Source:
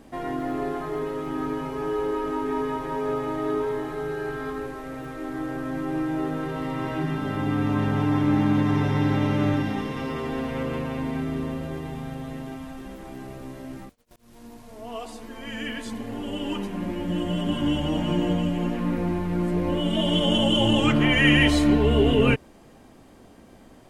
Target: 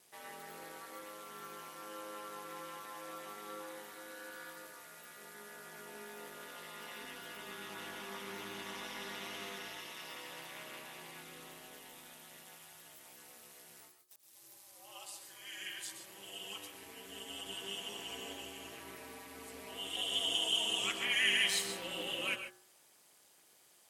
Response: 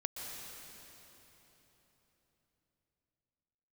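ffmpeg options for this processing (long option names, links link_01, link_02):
-filter_complex "[0:a]aeval=exprs='val(0)*sin(2*PI*100*n/s)':channel_layout=same,aderivative,bandreject=frequency=60.74:width_type=h:width=4,bandreject=frequency=121.48:width_type=h:width=4,bandreject=frequency=182.22:width_type=h:width=4,bandreject=frequency=242.96:width_type=h:width=4,bandreject=frequency=303.7:width_type=h:width=4,bandreject=frequency=364.44:width_type=h:width=4,bandreject=frequency=425.18:width_type=h:width=4,bandreject=frequency=485.92:width_type=h:width=4,bandreject=frequency=546.66:width_type=h:width=4,bandreject=frequency=607.4:width_type=h:width=4,bandreject=frequency=668.14:width_type=h:width=4,bandreject=frequency=728.88:width_type=h:width=4,bandreject=frequency=789.62:width_type=h:width=4,bandreject=frequency=850.36:width_type=h:width=4,bandreject=frequency=911.1:width_type=h:width=4,bandreject=frequency=971.84:width_type=h:width=4,bandreject=frequency=1032.58:width_type=h:width=4,bandreject=frequency=1093.32:width_type=h:width=4,bandreject=frequency=1154.06:width_type=h:width=4,bandreject=frequency=1214.8:width_type=h:width=4,bandreject=frequency=1275.54:width_type=h:width=4,bandreject=frequency=1336.28:width_type=h:width=4,bandreject=frequency=1397.02:width_type=h:width=4,bandreject=frequency=1457.76:width_type=h:width=4,bandreject=frequency=1518.5:width_type=h:width=4,bandreject=frequency=1579.24:width_type=h:width=4,bandreject=frequency=1639.98:width_type=h:width=4,bandreject=frequency=1700.72:width_type=h:width=4,bandreject=frequency=1761.46:width_type=h:width=4[link_01];[1:a]atrim=start_sample=2205,atrim=end_sample=6615[link_02];[link_01][link_02]afir=irnorm=-1:irlink=0,volume=5.5dB"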